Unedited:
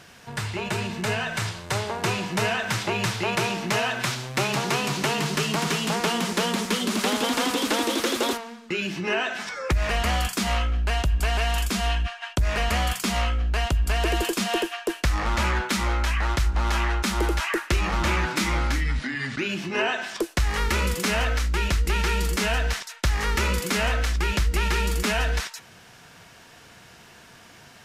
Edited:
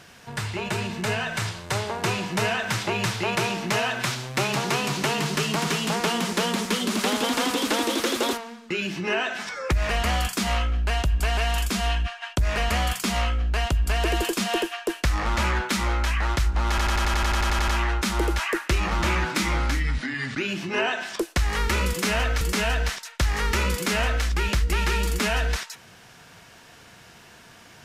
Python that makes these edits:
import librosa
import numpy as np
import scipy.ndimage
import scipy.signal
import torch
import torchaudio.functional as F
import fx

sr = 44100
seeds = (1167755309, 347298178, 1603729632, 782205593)

y = fx.edit(x, sr, fx.stutter(start_s=16.69, slice_s=0.09, count=12),
    fx.cut(start_s=21.42, length_s=0.83), tone=tone)